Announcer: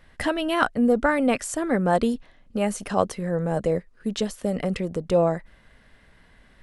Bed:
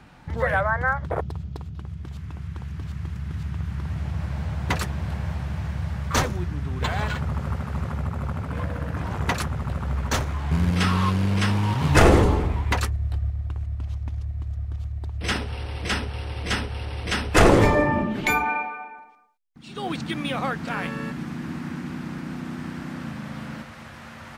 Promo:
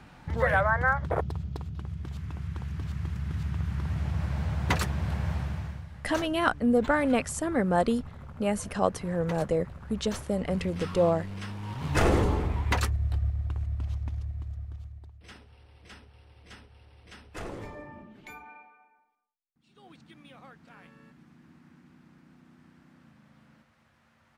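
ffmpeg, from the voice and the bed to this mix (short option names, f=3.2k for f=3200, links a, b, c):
-filter_complex "[0:a]adelay=5850,volume=-3.5dB[a];[1:a]volume=12.5dB,afade=t=out:st=5.38:d=0.49:silence=0.188365,afade=t=in:st=11.58:d=1.36:silence=0.199526,afade=t=out:st=13.9:d=1.32:silence=0.0794328[b];[a][b]amix=inputs=2:normalize=0"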